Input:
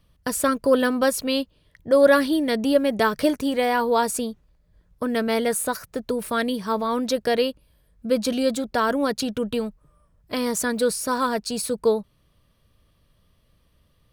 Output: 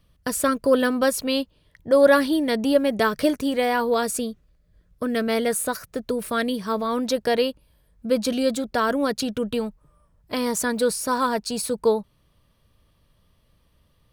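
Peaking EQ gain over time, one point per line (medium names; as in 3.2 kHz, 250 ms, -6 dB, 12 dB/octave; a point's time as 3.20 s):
peaking EQ 890 Hz 0.25 oct
-3.5 dB
from 1.15 s +3 dB
from 2.88 s -3.5 dB
from 3.94 s -12.5 dB
from 5.21 s -4.5 dB
from 6.98 s +4 dB
from 8.23 s -2.5 dB
from 9.58 s +4.5 dB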